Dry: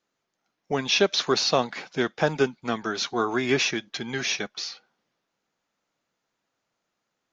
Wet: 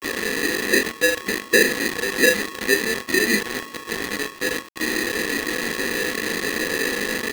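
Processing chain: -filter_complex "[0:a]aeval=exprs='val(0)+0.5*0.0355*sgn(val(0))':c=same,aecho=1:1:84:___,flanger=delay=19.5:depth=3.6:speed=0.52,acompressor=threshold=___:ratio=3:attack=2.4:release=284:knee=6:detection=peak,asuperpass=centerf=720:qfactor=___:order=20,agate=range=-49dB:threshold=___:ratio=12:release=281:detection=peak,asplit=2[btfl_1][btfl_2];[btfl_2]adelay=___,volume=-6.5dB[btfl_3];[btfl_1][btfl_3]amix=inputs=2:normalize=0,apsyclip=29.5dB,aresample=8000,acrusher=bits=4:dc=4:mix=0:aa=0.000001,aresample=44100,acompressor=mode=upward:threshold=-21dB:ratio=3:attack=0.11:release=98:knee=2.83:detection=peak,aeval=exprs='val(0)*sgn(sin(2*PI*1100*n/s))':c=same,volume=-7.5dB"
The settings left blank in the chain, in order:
0.112, -29dB, 2.2, -53dB, 37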